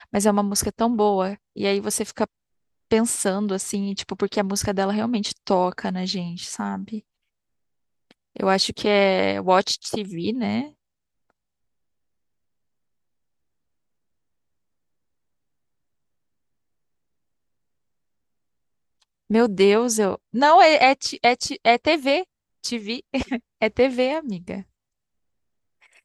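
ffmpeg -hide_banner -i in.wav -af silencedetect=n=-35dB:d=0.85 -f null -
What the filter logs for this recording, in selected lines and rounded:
silence_start: 6.99
silence_end: 8.11 | silence_duration: 1.12
silence_start: 10.67
silence_end: 19.30 | silence_duration: 8.63
silence_start: 24.61
silence_end: 26.05 | silence_duration: 1.43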